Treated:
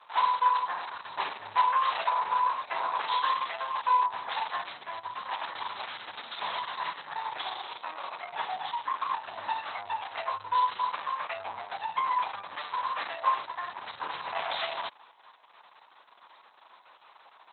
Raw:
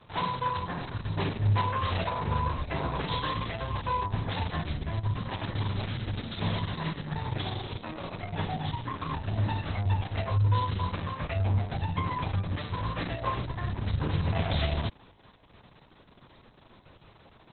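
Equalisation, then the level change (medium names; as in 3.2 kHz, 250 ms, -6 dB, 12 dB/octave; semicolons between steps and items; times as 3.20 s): resonant high-pass 940 Hz, resonance Q 2.1; 0.0 dB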